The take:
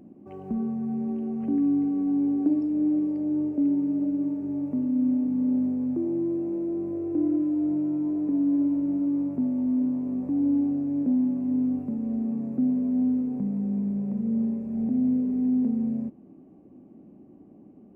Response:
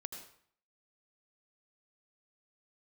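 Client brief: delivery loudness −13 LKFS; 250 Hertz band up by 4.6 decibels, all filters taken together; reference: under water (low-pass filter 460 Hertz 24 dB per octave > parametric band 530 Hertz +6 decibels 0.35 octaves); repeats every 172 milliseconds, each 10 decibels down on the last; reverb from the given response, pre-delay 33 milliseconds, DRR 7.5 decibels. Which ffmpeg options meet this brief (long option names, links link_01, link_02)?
-filter_complex "[0:a]equalizer=frequency=250:width_type=o:gain=5,aecho=1:1:172|344|516|688:0.316|0.101|0.0324|0.0104,asplit=2[link_01][link_02];[1:a]atrim=start_sample=2205,adelay=33[link_03];[link_02][link_03]afir=irnorm=-1:irlink=0,volume=-5dB[link_04];[link_01][link_04]amix=inputs=2:normalize=0,lowpass=frequency=460:width=0.5412,lowpass=frequency=460:width=1.3066,equalizer=frequency=530:width_type=o:width=0.35:gain=6,volume=8dB"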